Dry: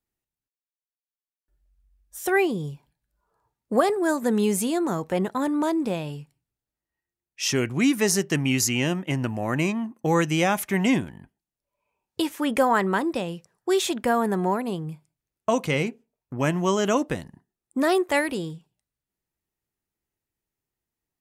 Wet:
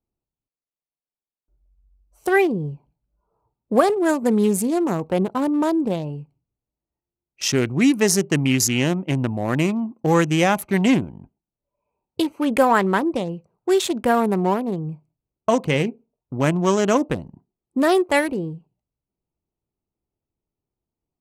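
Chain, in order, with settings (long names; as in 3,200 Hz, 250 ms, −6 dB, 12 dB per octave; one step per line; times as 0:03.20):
adaptive Wiener filter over 25 samples
level +4.5 dB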